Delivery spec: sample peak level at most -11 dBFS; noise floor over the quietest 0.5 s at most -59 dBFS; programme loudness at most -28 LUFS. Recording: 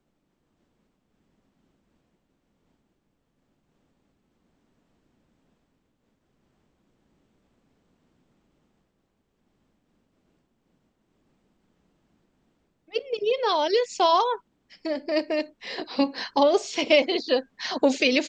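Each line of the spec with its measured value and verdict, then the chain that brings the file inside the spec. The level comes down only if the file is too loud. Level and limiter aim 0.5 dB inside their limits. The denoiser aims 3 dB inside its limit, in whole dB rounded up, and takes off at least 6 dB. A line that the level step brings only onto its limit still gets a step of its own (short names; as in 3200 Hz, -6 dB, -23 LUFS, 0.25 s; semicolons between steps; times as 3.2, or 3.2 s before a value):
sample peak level -6.5 dBFS: fail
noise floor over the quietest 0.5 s -73 dBFS: OK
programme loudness -24.5 LUFS: fail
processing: gain -4 dB; limiter -11.5 dBFS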